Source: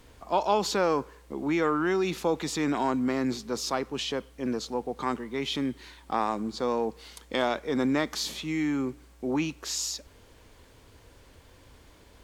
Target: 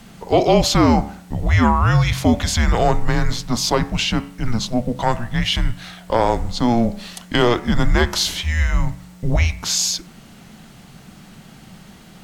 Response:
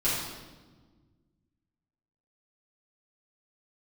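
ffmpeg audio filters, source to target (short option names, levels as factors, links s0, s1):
-af "bandreject=f=74.32:t=h:w=4,bandreject=f=148.64:t=h:w=4,bandreject=f=222.96:t=h:w=4,bandreject=f=297.28:t=h:w=4,bandreject=f=371.6:t=h:w=4,bandreject=f=445.92:t=h:w=4,bandreject=f=520.24:t=h:w=4,bandreject=f=594.56:t=h:w=4,bandreject=f=668.88:t=h:w=4,bandreject=f=743.2:t=h:w=4,bandreject=f=817.52:t=h:w=4,bandreject=f=891.84:t=h:w=4,bandreject=f=966.16:t=h:w=4,bandreject=f=1040.48:t=h:w=4,bandreject=f=1114.8:t=h:w=4,bandreject=f=1189.12:t=h:w=4,bandreject=f=1263.44:t=h:w=4,bandreject=f=1337.76:t=h:w=4,bandreject=f=1412.08:t=h:w=4,bandreject=f=1486.4:t=h:w=4,bandreject=f=1560.72:t=h:w=4,bandreject=f=1635.04:t=h:w=4,bandreject=f=1709.36:t=h:w=4,bandreject=f=1783.68:t=h:w=4,bandreject=f=1858:t=h:w=4,bandreject=f=1932.32:t=h:w=4,bandreject=f=2006.64:t=h:w=4,bandreject=f=2080.96:t=h:w=4,bandreject=f=2155.28:t=h:w=4,bandreject=f=2229.6:t=h:w=4,bandreject=f=2303.92:t=h:w=4,bandreject=f=2378.24:t=h:w=4,bandreject=f=2452.56:t=h:w=4,bandreject=f=2526.88:t=h:w=4,bandreject=f=2601.2:t=h:w=4,bandreject=f=2675.52:t=h:w=4,bandreject=f=2749.84:t=h:w=4,bandreject=f=2824.16:t=h:w=4,bandreject=f=2898.48:t=h:w=4,afreqshift=-240,apsyclip=7.08,volume=0.562"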